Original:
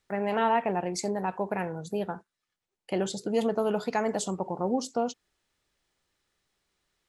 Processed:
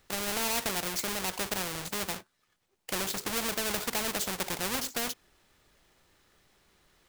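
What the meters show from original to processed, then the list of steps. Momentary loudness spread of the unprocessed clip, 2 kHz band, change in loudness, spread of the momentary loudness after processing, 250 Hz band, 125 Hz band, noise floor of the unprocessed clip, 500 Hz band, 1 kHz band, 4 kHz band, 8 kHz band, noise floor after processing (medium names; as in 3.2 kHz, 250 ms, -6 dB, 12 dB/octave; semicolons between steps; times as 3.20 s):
8 LU, +3.5 dB, -1.5 dB, 7 LU, -8.0 dB, -6.0 dB, under -85 dBFS, -9.5 dB, -7.0 dB, +9.0 dB, +8.0 dB, -76 dBFS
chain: square wave that keeps the level; spectrum-flattening compressor 2:1; trim -1 dB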